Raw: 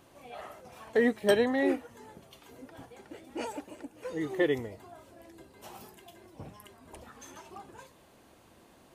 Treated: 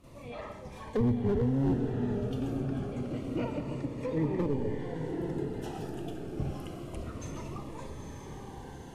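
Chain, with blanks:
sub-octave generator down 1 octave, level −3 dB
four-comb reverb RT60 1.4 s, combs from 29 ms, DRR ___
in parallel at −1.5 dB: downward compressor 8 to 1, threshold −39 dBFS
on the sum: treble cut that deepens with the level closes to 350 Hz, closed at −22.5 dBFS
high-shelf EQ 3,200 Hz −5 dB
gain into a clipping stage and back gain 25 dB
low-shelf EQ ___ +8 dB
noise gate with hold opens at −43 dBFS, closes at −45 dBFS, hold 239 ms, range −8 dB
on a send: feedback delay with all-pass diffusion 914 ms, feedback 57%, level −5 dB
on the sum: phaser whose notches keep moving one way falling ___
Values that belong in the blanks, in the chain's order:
8.5 dB, 140 Hz, 0.27 Hz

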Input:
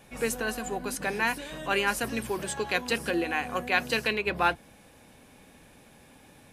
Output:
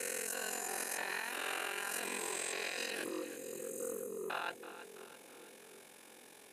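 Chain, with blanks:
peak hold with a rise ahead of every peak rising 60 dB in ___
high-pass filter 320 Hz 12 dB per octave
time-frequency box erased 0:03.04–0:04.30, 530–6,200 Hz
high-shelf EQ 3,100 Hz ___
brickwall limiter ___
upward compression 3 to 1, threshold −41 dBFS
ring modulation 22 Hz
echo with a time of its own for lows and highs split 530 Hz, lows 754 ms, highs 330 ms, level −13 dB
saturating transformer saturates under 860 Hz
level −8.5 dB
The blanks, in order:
2.41 s, +7.5 dB, −18 dBFS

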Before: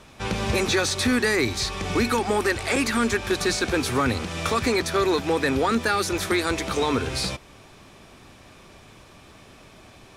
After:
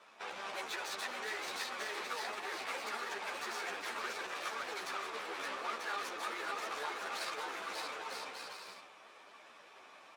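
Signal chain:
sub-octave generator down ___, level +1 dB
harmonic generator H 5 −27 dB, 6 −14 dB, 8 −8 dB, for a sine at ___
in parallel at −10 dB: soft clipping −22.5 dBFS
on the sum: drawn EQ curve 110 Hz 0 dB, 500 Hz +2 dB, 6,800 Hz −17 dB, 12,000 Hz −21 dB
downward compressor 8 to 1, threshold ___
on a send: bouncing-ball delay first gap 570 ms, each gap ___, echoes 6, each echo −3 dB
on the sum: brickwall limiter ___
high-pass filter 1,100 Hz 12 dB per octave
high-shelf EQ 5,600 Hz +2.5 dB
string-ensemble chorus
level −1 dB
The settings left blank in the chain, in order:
2 octaves, −9.5 dBFS, −19 dBFS, 0.65×, −18 dBFS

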